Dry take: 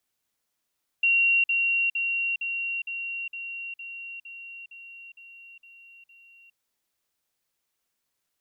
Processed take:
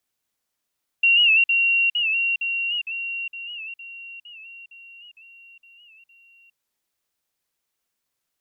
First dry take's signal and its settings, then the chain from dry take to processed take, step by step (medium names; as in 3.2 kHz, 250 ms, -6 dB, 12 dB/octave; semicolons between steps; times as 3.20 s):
level ladder 2.75 kHz -18 dBFS, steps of -3 dB, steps 12, 0.41 s 0.05 s
dynamic bell 2.6 kHz, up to +5 dB, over -36 dBFS, Q 0.88; warped record 78 rpm, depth 100 cents